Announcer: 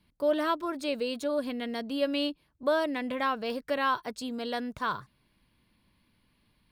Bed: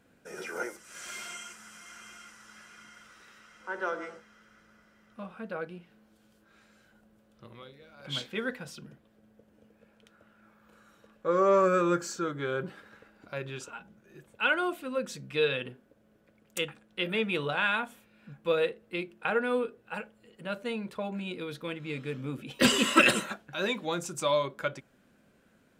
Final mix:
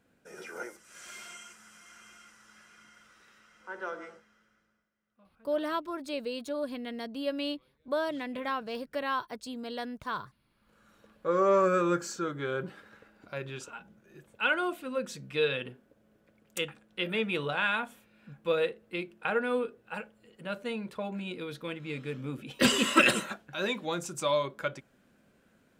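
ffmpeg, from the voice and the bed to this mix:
ffmpeg -i stem1.wav -i stem2.wav -filter_complex "[0:a]adelay=5250,volume=-4dB[link_01];[1:a]volume=16dB,afade=type=out:start_time=4.09:duration=0.81:silence=0.141254,afade=type=in:start_time=10.48:duration=0.55:silence=0.0891251[link_02];[link_01][link_02]amix=inputs=2:normalize=0" out.wav

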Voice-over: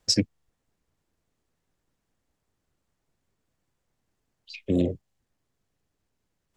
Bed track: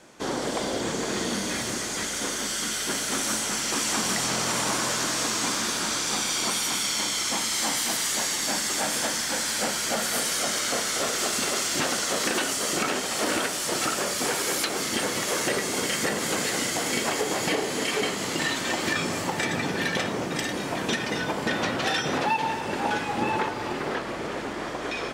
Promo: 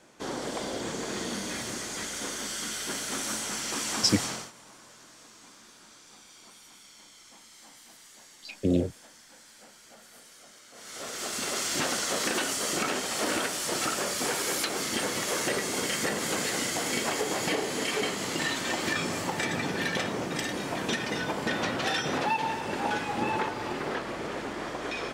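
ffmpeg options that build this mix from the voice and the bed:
ffmpeg -i stem1.wav -i stem2.wav -filter_complex "[0:a]adelay=3950,volume=-1dB[link_01];[1:a]volume=17.5dB,afade=type=out:start_time=4.24:duration=0.27:silence=0.0944061,afade=type=in:start_time=10.73:duration=0.99:silence=0.0707946[link_02];[link_01][link_02]amix=inputs=2:normalize=0" out.wav

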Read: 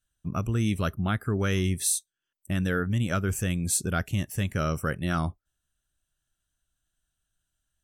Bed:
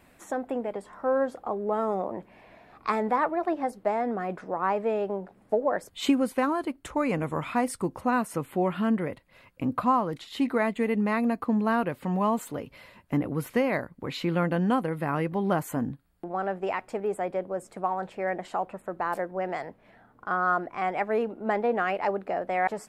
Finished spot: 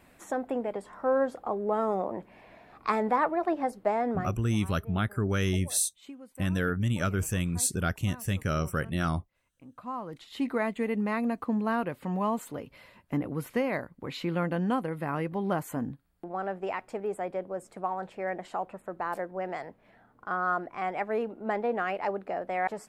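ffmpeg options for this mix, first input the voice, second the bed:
ffmpeg -i stem1.wav -i stem2.wav -filter_complex "[0:a]adelay=3900,volume=-1.5dB[link_01];[1:a]volume=18.5dB,afade=type=out:start_time=4.16:duration=0.24:silence=0.0794328,afade=type=in:start_time=9.75:duration=0.73:silence=0.112202[link_02];[link_01][link_02]amix=inputs=2:normalize=0" out.wav

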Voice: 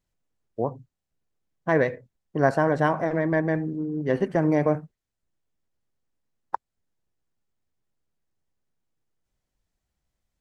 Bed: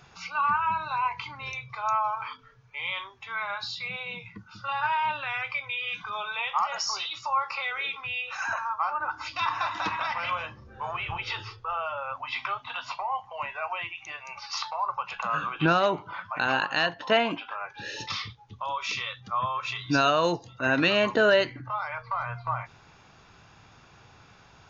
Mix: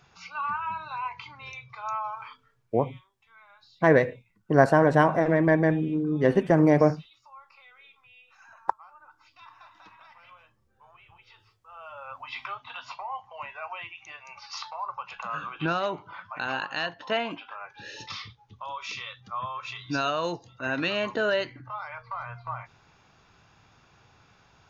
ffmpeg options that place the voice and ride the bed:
ffmpeg -i stem1.wav -i stem2.wav -filter_complex "[0:a]adelay=2150,volume=2.5dB[link_01];[1:a]volume=12.5dB,afade=type=out:start_time=2.19:duration=0.57:silence=0.133352,afade=type=in:start_time=11.65:duration=0.54:silence=0.125893[link_02];[link_01][link_02]amix=inputs=2:normalize=0" out.wav

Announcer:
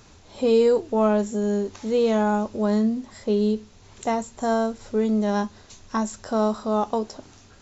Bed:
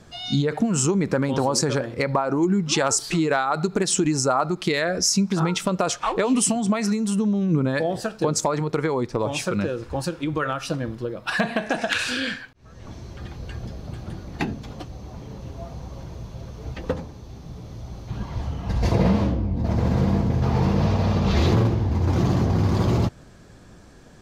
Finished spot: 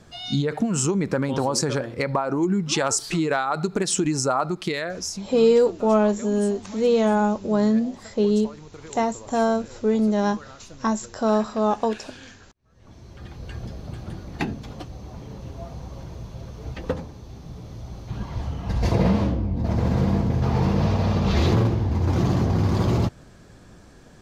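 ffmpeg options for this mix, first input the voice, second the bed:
ffmpeg -i stem1.wav -i stem2.wav -filter_complex "[0:a]adelay=4900,volume=1.5dB[link_01];[1:a]volume=17dB,afade=type=out:start_time=4.49:duration=0.82:silence=0.133352,afade=type=in:start_time=12.62:duration=0.97:silence=0.11885[link_02];[link_01][link_02]amix=inputs=2:normalize=0" out.wav

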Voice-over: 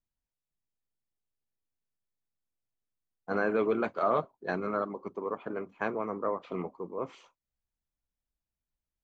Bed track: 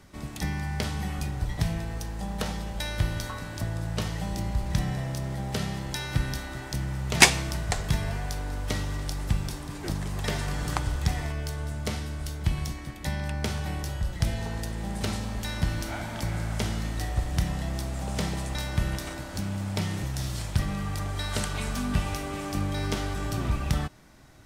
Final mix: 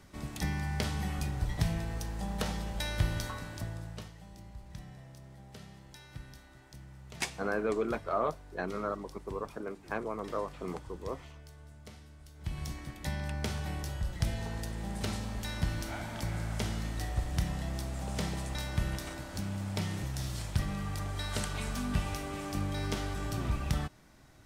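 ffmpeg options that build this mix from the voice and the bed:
ffmpeg -i stem1.wav -i stem2.wav -filter_complex "[0:a]adelay=4100,volume=-3.5dB[link_01];[1:a]volume=11.5dB,afade=type=out:start_time=3.21:duration=0.92:silence=0.149624,afade=type=in:start_time=12.34:duration=0.4:silence=0.188365[link_02];[link_01][link_02]amix=inputs=2:normalize=0" out.wav

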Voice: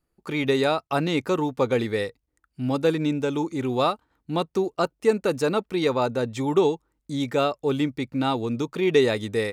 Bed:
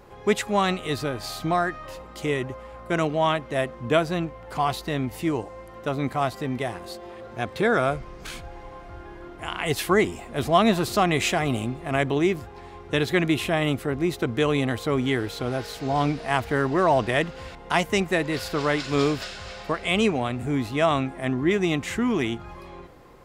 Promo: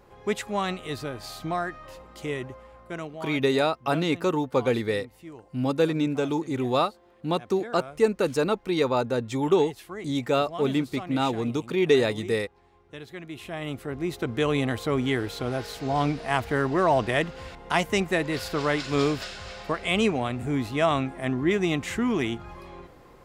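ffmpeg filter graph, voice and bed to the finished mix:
ffmpeg -i stem1.wav -i stem2.wav -filter_complex "[0:a]adelay=2950,volume=-1dB[link_01];[1:a]volume=11dB,afade=type=out:start_time=2.44:duration=0.87:silence=0.237137,afade=type=in:start_time=13.27:duration=1.29:silence=0.149624[link_02];[link_01][link_02]amix=inputs=2:normalize=0" out.wav

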